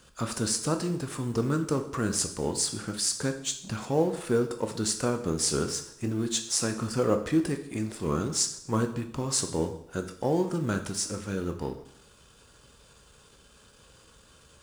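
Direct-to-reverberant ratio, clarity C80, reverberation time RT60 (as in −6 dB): 6.0 dB, 13.5 dB, 0.75 s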